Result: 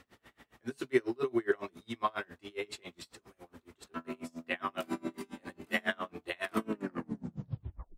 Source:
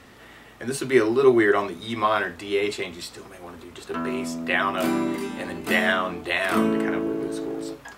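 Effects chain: tape stop on the ending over 1.29 s; logarithmic tremolo 7.3 Hz, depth 31 dB; trim -7.5 dB

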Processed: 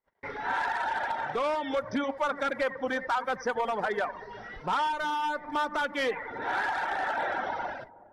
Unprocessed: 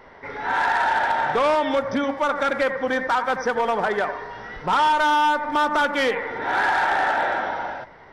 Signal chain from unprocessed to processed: reverb removal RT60 0.75 s; gate -43 dBFS, range -41 dB; gain riding within 5 dB 0.5 s; on a send: feedback echo behind a low-pass 370 ms, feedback 32%, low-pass 680 Hz, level -16 dB; on the sum: trim -7 dB

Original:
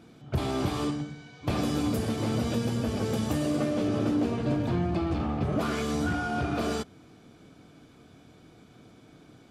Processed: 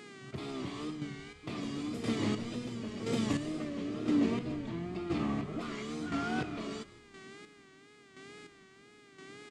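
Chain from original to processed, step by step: peaking EQ 1.6 kHz -12 dB 0.29 oct; mains buzz 400 Hz, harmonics 25, -51 dBFS -5 dB/octave; square tremolo 0.98 Hz, depth 60%, duty 30%; cabinet simulation 170–8200 Hz, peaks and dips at 540 Hz -8 dB, 800 Hz -9 dB, 1.9 kHz +7 dB, 5.7 kHz -4 dB; frequency-shifting echo 166 ms, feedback 44%, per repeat -110 Hz, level -19.5 dB; wow and flutter 79 cents

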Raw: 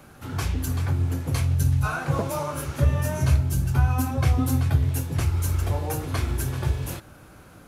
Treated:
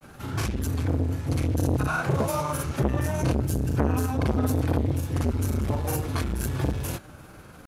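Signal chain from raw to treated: granulator 100 ms, spray 33 ms, pitch spread up and down by 0 st; transformer saturation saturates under 620 Hz; trim +3 dB

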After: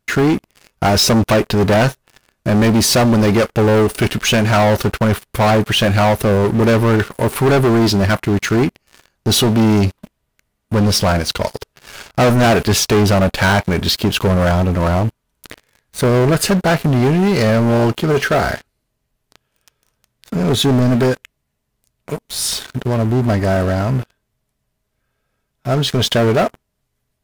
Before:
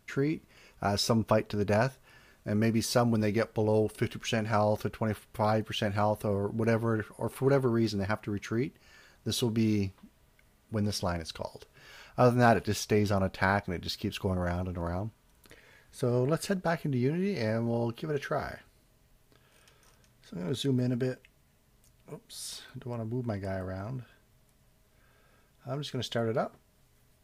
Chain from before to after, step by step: waveshaping leveller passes 5; trim +3 dB

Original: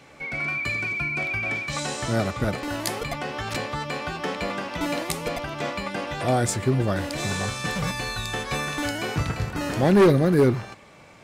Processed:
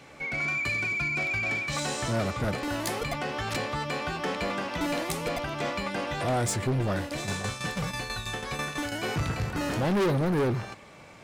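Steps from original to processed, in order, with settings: 6.95–9.03 s: tremolo saw down 6.1 Hz, depth 70%; saturation -22.5 dBFS, distortion -7 dB

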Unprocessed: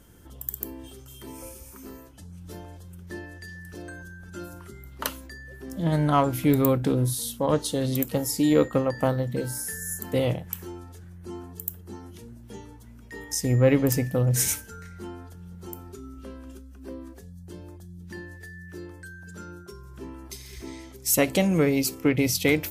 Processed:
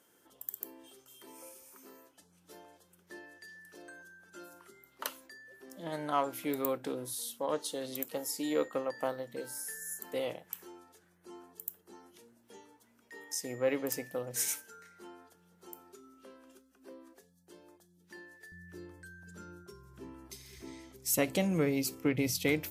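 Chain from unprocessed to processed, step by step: high-pass 390 Hz 12 dB/octave, from 18.52 s 89 Hz; trim -8 dB

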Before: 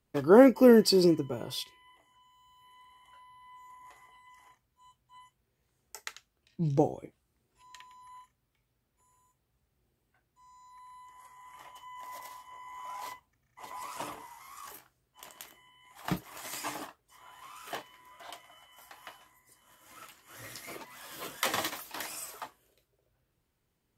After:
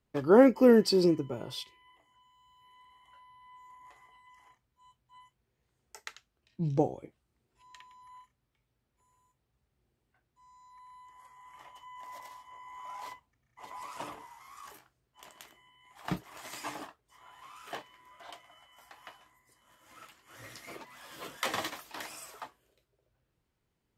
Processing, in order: treble shelf 8.4 kHz -10 dB; trim -1.5 dB

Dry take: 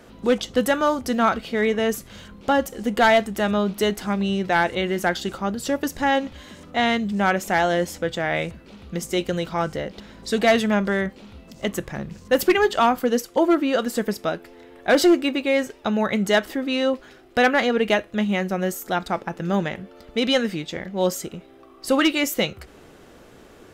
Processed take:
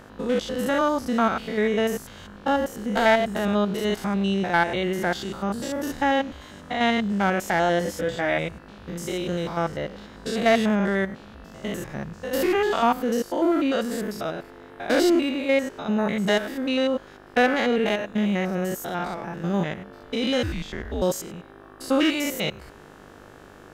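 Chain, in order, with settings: spectrogram pixelated in time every 100 ms; 7.79–8.37 s: doubling 16 ms -5 dB; 20.43–21.02 s: frequency shift -130 Hz; mains buzz 50 Hz, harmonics 36, -50 dBFS -1 dB/octave

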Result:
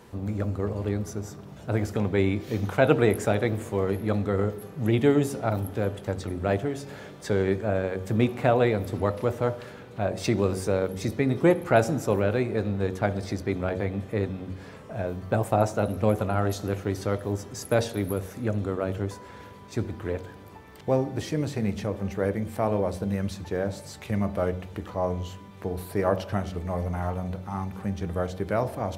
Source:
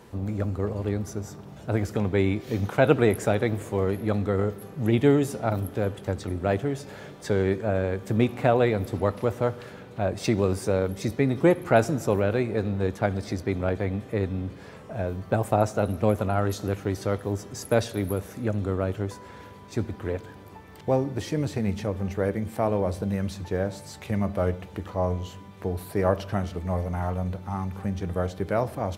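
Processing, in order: de-hum 46.45 Hz, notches 21

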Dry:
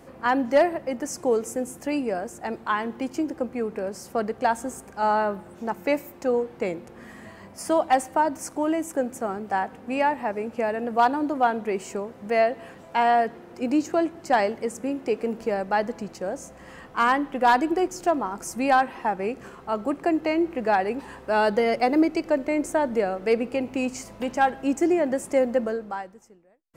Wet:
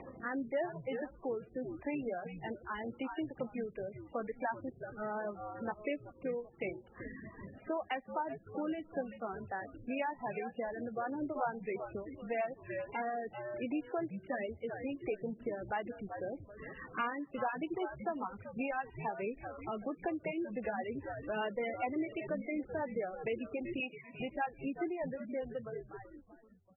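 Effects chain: fade out at the end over 2.46 s; reverb removal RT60 1.2 s; upward compressor, threshold -34 dBFS; frequency-shifting echo 383 ms, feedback 34%, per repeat -110 Hz, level -12.5 dB; rotary cabinet horn 0.85 Hz, later 5 Hz, at 15.52 s; treble shelf 3.6 kHz +11.5 dB; compression 2.5:1, threshold -30 dBFS, peak gain reduction 10.5 dB; 23.80–24.20 s: RIAA curve recording; trim -5.5 dB; MP3 8 kbps 24 kHz

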